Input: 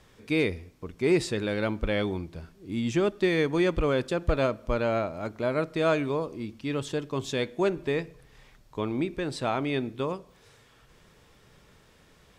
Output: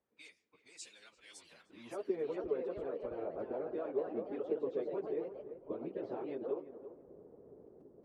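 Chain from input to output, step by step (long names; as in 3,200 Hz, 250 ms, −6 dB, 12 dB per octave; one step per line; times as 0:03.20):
low-pass that shuts in the quiet parts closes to 500 Hz, open at −25 dBFS
harmonic and percussive parts rebalanced harmonic −13 dB
high-shelf EQ 4,700 Hz −8 dB
downward compressor 4 to 1, threshold −48 dBFS, peak gain reduction 23.5 dB
band-pass filter sweep 7,200 Hz → 410 Hz, 0:01.96–0:03.22
time stretch by phase vocoder 0.65×
on a send: feedback echo with a low-pass in the loop 340 ms, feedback 27%, low-pass 1,200 Hz, level −11.5 dB
on the sum: delay with pitch and tempo change per echo 645 ms, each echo +2 semitones, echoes 2, each echo −6 dB
level +17 dB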